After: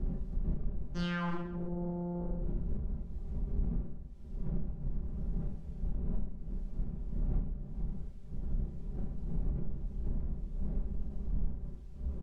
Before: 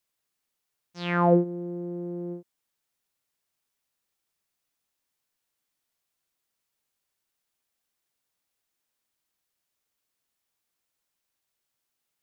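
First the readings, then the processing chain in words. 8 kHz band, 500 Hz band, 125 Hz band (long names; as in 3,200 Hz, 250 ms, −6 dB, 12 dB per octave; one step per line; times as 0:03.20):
can't be measured, −14.5 dB, +0.5 dB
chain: wavefolder on the positive side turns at −23 dBFS
wind on the microphone 80 Hz −35 dBFS
comb filter 5.1 ms, depth 100%
downward compressor 12 to 1, threshold −38 dBFS, peak gain reduction 25.5 dB
tilt shelving filter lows +3 dB, about 1,400 Hz
soft clipping −34 dBFS, distortion −16 dB
high-frequency loss of the air 60 metres
reverse bouncing-ball delay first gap 30 ms, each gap 1.4×, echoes 5
level +6.5 dB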